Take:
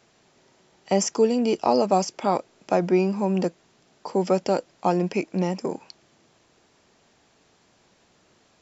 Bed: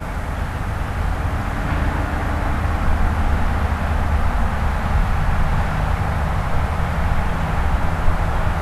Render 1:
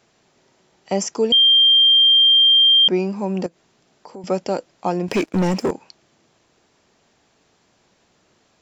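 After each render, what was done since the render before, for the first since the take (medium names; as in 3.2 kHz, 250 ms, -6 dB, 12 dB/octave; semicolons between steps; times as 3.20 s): 1.32–2.88 s: bleep 3.18 kHz -9.5 dBFS; 3.46–4.24 s: compression 2.5:1, threshold -39 dBFS; 5.08–5.71 s: waveshaping leveller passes 3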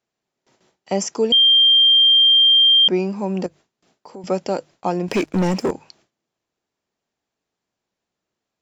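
hum notches 50/100/150 Hz; gate with hold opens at -48 dBFS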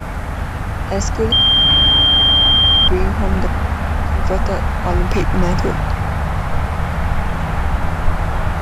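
add bed +1 dB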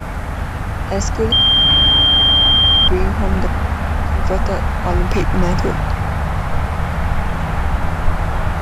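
no audible change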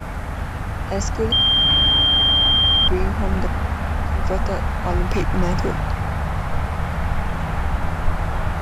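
trim -4 dB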